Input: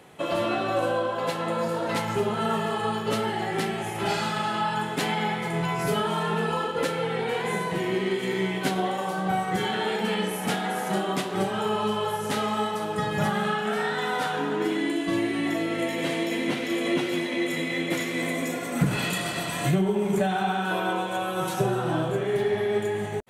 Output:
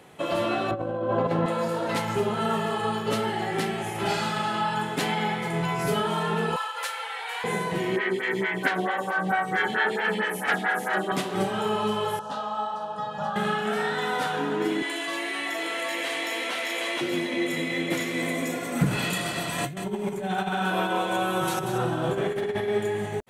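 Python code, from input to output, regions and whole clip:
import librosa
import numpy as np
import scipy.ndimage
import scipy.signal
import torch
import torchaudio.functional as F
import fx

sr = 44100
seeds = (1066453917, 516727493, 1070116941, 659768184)

y = fx.chain(x, sr, fx.lowpass(hz=1200.0, slope=6),
    fx.low_shelf(hz=480.0, db=10.0),
    fx.over_compress(threshold_db=-25.0, ratio=-0.5), at=(0.71, 1.46))
y = fx.chain(y, sr, fx.highpass(hz=820.0, slope=24),
    fx.high_shelf(hz=7800.0, db=4.5), at=(6.56, 7.44))
y = fx.chain(y, sr, fx.peak_eq(hz=1700.0, db=13.5, octaves=0.84),
    fx.stagger_phaser(hz=4.5), at=(7.96, 11.12))
y = fx.chain(y, sr, fx.bandpass_edges(low_hz=280.0, high_hz=3400.0),
    fx.fixed_phaser(hz=890.0, stages=4),
    fx.doubler(ms=30.0, db=-11), at=(12.19, 13.36))
y = fx.chain(y, sr, fx.highpass(hz=760.0, slope=12),
    fx.echo_single(ms=764, db=-3.5),
    fx.env_flatten(amount_pct=70), at=(14.82, 17.01))
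y = fx.chain(y, sr, fx.over_compress(threshold_db=-27.0, ratio=-0.5),
    fx.echo_feedback(ms=187, feedback_pct=18, wet_db=-8), at=(19.58, 22.69))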